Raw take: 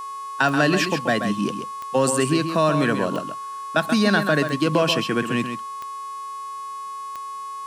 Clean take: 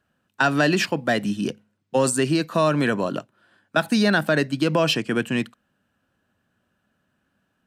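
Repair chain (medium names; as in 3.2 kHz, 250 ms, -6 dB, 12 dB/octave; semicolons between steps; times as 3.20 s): de-click; de-hum 422.1 Hz, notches 27; band-stop 1.1 kHz, Q 30; inverse comb 132 ms -8 dB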